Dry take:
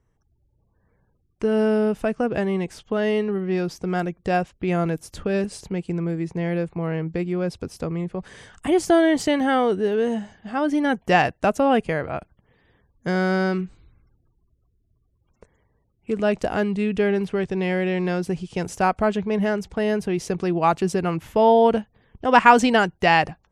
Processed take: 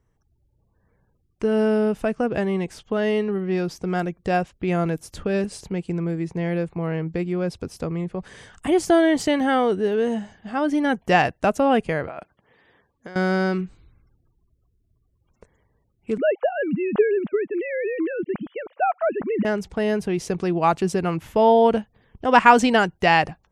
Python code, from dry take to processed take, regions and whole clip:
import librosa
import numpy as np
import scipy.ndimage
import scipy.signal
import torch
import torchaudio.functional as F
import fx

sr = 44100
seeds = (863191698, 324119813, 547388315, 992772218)

y = fx.chain(x, sr, fx.highpass(hz=500.0, slope=6),
    fx.high_shelf(hz=6100.0, db=-11.0),
    fx.over_compress(threshold_db=-36.0, ratio=-1.0), at=(12.08, 13.16))
y = fx.chain(y, sr, fx.sine_speech(),
    fx.air_absorb(metres=260.0), at=(16.18, 19.45))